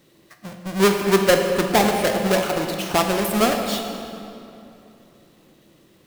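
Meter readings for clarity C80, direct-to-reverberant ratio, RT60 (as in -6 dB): 5.5 dB, 3.0 dB, 2.9 s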